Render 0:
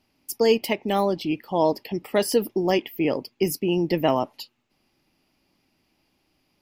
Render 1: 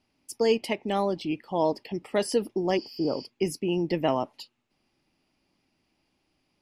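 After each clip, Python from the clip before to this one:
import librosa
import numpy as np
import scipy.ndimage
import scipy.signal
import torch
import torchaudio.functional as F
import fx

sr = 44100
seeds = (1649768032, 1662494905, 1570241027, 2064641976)

y = fx.spec_repair(x, sr, seeds[0], start_s=2.79, length_s=0.43, low_hz=1600.0, high_hz=7100.0, source='after')
y = scipy.signal.sosfilt(scipy.signal.cheby1(3, 1.0, 10000.0, 'lowpass', fs=sr, output='sos'), y)
y = F.gain(torch.from_numpy(y), -4.0).numpy()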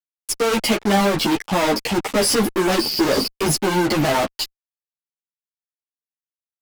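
y = fx.rider(x, sr, range_db=4, speed_s=2.0)
y = fx.fuzz(y, sr, gain_db=48.0, gate_db=-45.0)
y = fx.ensemble(y, sr)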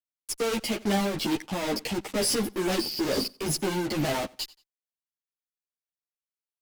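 y = fx.echo_feedback(x, sr, ms=90, feedback_pct=26, wet_db=-23)
y = y * (1.0 - 0.33 / 2.0 + 0.33 / 2.0 * np.cos(2.0 * np.pi * 2.2 * (np.arange(len(y)) / sr)))
y = fx.dynamic_eq(y, sr, hz=1100.0, q=0.85, threshold_db=-35.0, ratio=4.0, max_db=-5)
y = F.gain(torch.from_numpy(y), -6.5).numpy()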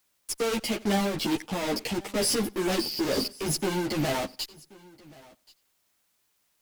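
y = fx.quant_dither(x, sr, seeds[1], bits=12, dither='triangular')
y = y + 10.0 ** (-23.5 / 20.0) * np.pad(y, (int(1080 * sr / 1000.0), 0))[:len(y)]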